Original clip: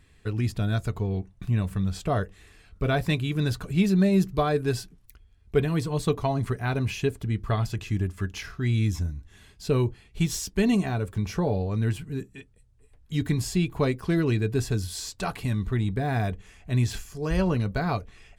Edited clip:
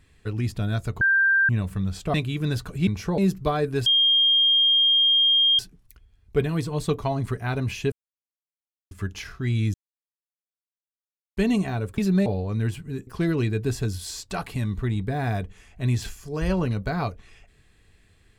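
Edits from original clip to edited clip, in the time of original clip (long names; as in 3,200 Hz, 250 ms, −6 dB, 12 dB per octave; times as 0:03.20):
0:01.01–0:01.49: beep over 1,580 Hz −16 dBFS
0:02.14–0:03.09: remove
0:03.82–0:04.10: swap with 0:11.17–0:11.48
0:04.78: insert tone 3,220 Hz −15.5 dBFS 1.73 s
0:07.11–0:08.10: silence
0:08.93–0:10.56: silence
0:12.29–0:13.96: remove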